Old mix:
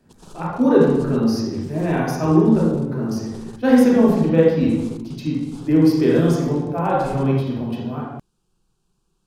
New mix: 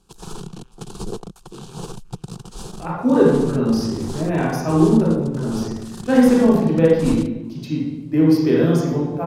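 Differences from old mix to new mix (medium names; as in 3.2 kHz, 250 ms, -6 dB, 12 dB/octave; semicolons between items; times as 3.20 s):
speech: entry +2.45 s; background +9.5 dB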